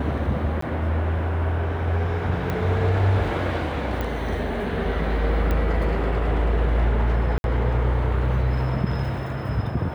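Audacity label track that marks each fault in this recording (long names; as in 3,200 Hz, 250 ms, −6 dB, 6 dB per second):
0.610000	0.620000	drop-out
2.500000	2.500000	click −14 dBFS
4.010000	4.010000	click −15 dBFS
5.510000	5.510000	click −14 dBFS
7.380000	7.440000	drop-out 61 ms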